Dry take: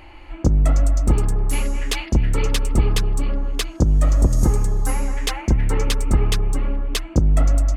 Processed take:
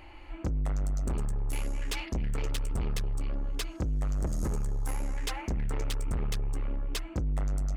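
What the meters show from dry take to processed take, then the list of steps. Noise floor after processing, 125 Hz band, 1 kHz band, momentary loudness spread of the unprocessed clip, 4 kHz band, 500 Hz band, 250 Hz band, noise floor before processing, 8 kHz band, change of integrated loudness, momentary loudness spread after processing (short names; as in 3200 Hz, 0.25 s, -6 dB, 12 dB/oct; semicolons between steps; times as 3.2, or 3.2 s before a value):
-45 dBFS, -13.0 dB, -11.5 dB, 7 LU, -12.0 dB, -13.0 dB, -13.0 dB, -39 dBFS, -12.5 dB, -13.0 dB, 4 LU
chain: soft clip -20 dBFS, distortion -9 dB; gain -6.5 dB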